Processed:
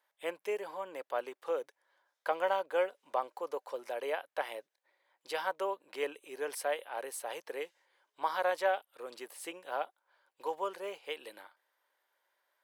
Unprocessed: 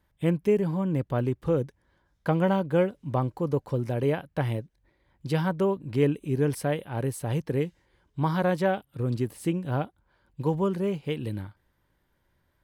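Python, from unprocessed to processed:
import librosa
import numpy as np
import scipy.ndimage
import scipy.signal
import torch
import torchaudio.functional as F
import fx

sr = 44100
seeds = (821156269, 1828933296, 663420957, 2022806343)

y = scipy.signal.sosfilt(scipy.signal.butter(4, 550.0, 'highpass', fs=sr, output='sos'), x)
y = y * librosa.db_to_amplitude(-2.0)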